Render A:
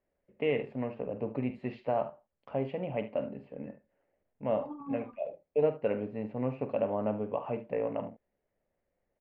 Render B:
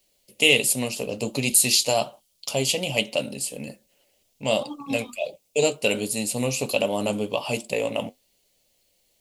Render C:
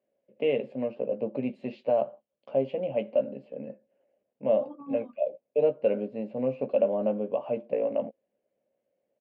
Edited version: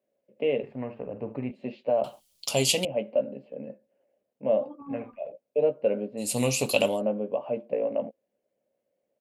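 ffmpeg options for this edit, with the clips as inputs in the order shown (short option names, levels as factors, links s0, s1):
-filter_complex "[0:a]asplit=2[s0][s1];[1:a]asplit=2[s2][s3];[2:a]asplit=5[s4][s5][s6][s7][s8];[s4]atrim=end=0.632[s9];[s0]atrim=start=0.628:end=1.512[s10];[s5]atrim=start=1.508:end=2.042[s11];[s2]atrim=start=2.038:end=2.852[s12];[s6]atrim=start=2.848:end=4.822[s13];[s1]atrim=start=4.818:end=5.322[s14];[s7]atrim=start=5.318:end=6.33[s15];[s3]atrim=start=6.17:end=7.02[s16];[s8]atrim=start=6.86[s17];[s9][s10]acrossfade=d=0.004:c1=hsin:c2=hsin[s18];[s18][s11]acrossfade=d=0.004:c1=hsin:c2=hsin[s19];[s19][s12]acrossfade=d=0.004:c1=hsin:c2=hsin[s20];[s20][s13]acrossfade=d=0.004:c1=hsin:c2=hsin[s21];[s21][s14]acrossfade=d=0.004:c1=hsin:c2=hsin[s22];[s22][s15]acrossfade=d=0.004:c1=hsin:c2=hsin[s23];[s23][s16]acrossfade=d=0.16:c1=tri:c2=tri[s24];[s24][s17]acrossfade=d=0.16:c1=tri:c2=tri"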